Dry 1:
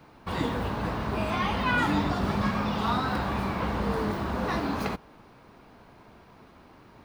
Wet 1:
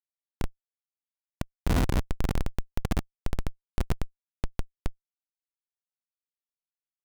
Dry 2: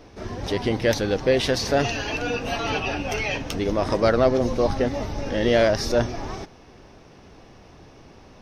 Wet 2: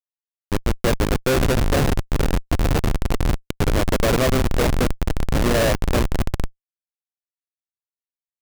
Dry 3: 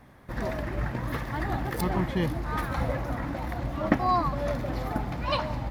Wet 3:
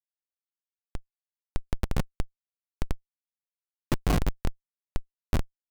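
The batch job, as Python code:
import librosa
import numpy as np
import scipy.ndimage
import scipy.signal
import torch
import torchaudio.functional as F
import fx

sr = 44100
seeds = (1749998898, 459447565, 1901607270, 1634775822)

y = fx.echo_diffused(x, sr, ms=517, feedback_pct=66, wet_db=-9.0)
y = fx.schmitt(y, sr, flips_db=-17.5)
y = F.gain(torch.from_numpy(y), 6.5).numpy()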